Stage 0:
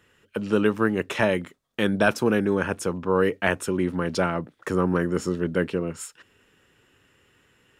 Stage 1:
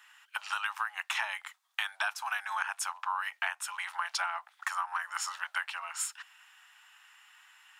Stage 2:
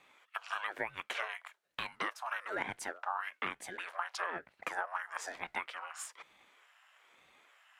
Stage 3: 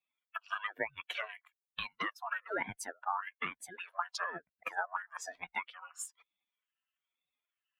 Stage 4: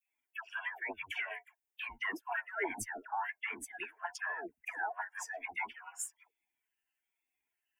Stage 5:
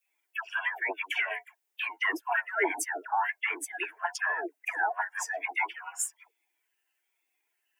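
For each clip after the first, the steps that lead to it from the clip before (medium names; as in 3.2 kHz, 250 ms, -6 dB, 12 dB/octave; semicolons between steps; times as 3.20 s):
steep high-pass 770 Hz 72 dB/octave; compression 16:1, threshold -34 dBFS, peak gain reduction 16.5 dB; trim +5 dB
treble shelf 2.3 kHz -10 dB; ring modulator with a swept carrier 410 Hz, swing 70%, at 1.1 Hz; trim +1.5 dB
expander on every frequency bin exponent 2; trim +5 dB
peak limiter -27.5 dBFS, peak gain reduction 8.5 dB; static phaser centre 810 Hz, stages 8; phase dispersion lows, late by 113 ms, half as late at 850 Hz; trim +5 dB
brick-wall FIR high-pass 280 Hz; trim +8.5 dB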